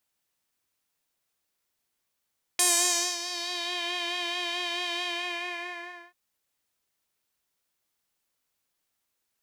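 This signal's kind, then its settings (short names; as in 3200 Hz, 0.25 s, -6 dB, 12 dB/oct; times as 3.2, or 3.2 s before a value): synth patch with vibrato F5, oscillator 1 triangle, interval -12 st, detune 28 cents, oscillator 2 level -5.5 dB, sub 0 dB, noise -29 dB, filter bandpass, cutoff 1600 Hz, Q 2.3, filter envelope 2.5 oct, filter decay 1.23 s, attack 5.2 ms, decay 0.58 s, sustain -16 dB, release 1.11 s, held 2.43 s, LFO 4.6 Hz, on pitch 35 cents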